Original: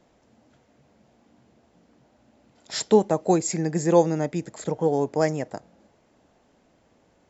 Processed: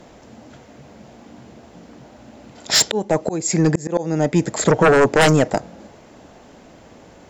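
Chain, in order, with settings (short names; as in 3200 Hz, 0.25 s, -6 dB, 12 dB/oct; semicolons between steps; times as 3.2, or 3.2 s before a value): 2.77–4.57 auto swell 0.632 s; sine folder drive 13 dB, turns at -8 dBFS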